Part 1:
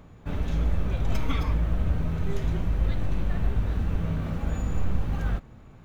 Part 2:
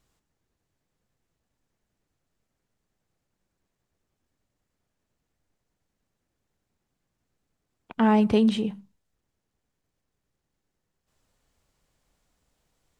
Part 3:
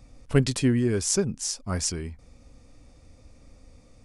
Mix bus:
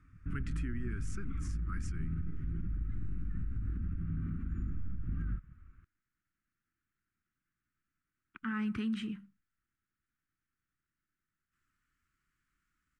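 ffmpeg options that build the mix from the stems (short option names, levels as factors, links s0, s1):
-filter_complex "[0:a]acompressor=threshold=0.0447:ratio=5,afwtdn=0.0316,volume=0.794[s0];[1:a]highshelf=f=4000:g=6,adelay=450,volume=0.299[s1];[2:a]volume=0.188[s2];[s0][s2]amix=inputs=2:normalize=0,equalizer=f=4600:w=1.5:g=-4,alimiter=level_in=1.12:limit=0.0631:level=0:latency=1:release=154,volume=0.891,volume=1[s3];[s1][s3]amix=inputs=2:normalize=0,firequalizer=gain_entry='entry(340,0);entry(530,-29);entry(800,-20);entry(1300,12);entry(3700,-8)':delay=0.05:min_phase=1,alimiter=level_in=1.68:limit=0.0631:level=0:latency=1:release=42,volume=0.596"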